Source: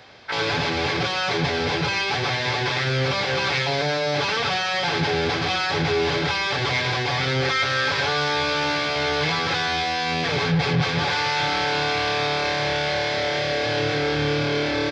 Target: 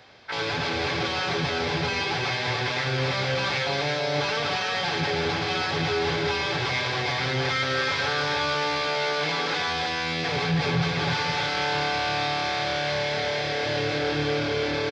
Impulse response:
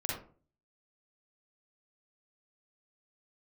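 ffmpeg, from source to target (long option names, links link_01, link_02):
-filter_complex "[0:a]asettb=1/sr,asplit=3[link_01][link_02][link_03];[link_01]atrim=end=8.554[link_04];[link_02]atrim=start=8.55:end=9.6,asetpts=PTS-STARTPTS,afade=type=in:duration=0.004:curve=qsin,afade=type=out:start_time=1.046:duration=0.004:curve=qsin,highpass=frequency=160:width=0.5412,highpass=frequency=160:width=1.3066[link_05];[link_03]atrim=start=9.596[link_06];[link_04][link_05]acrossfade=duration=0.004:curve1=hsin:curve2=qsin[link_07];[link_07][link_06]acrossfade=duration=0.004:curve1=qsin:curve2=hsin,aecho=1:1:322:0.596,volume=-4.5dB"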